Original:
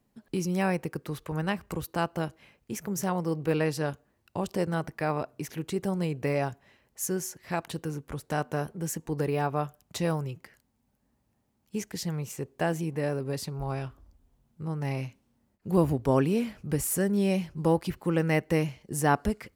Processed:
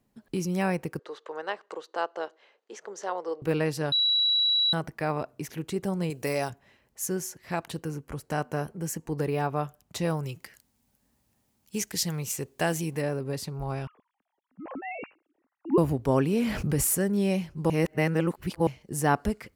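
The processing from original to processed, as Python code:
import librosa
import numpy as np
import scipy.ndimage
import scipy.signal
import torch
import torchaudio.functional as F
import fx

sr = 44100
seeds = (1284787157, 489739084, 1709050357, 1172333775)

y = fx.cabinet(x, sr, low_hz=420.0, low_slope=24, high_hz=6000.0, hz=(450.0, 2400.0, 5300.0), db=(4, -8, -6), at=(0.99, 3.42))
y = fx.bass_treble(y, sr, bass_db=-6, treble_db=13, at=(6.1, 6.5))
y = fx.notch(y, sr, hz=3600.0, q=7.7, at=(7.8, 9.14))
y = fx.high_shelf(y, sr, hz=2400.0, db=10.5, at=(10.23, 13.02))
y = fx.sine_speech(y, sr, at=(13.87, 15.78))
y = fx.env_flatten(y, sr, amount_pct=70, at=(16.33, 16.95))
y = fx.edit(y, sr, fx.bleep(start_s=3.92, length_s=0.81, hz=3910.0, db=-20.5),
    fx.reverse_span(start_s=17.7, length_s=0.97), tone=tone)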